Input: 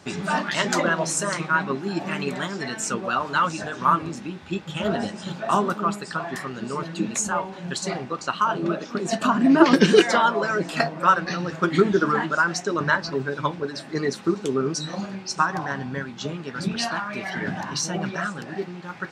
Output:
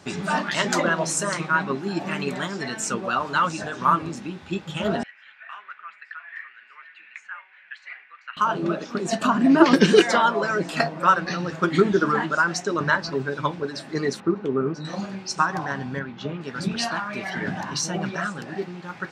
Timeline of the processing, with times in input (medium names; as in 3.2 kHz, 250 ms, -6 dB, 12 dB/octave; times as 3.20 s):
5.03–8.37 s: Butterworth band-pass 2 kHz, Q 2.3
14.20–14.85 s: low-pass 1.9 kHz
15.99–16.41 s: low-pass 3 kHz